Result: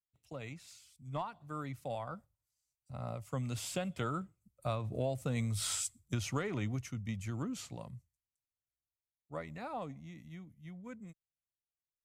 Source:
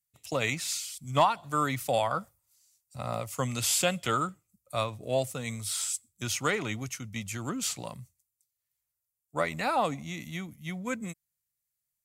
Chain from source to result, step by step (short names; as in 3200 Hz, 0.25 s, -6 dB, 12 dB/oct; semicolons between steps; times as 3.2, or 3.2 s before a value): Doppler pass-by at 5.59, 6 m/s, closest 2.4 m; tilt -2.5 dB/oct; compressor 8:1, threshold -36 dBFS, peak gain reduction 12.5 dB; gain +5 dB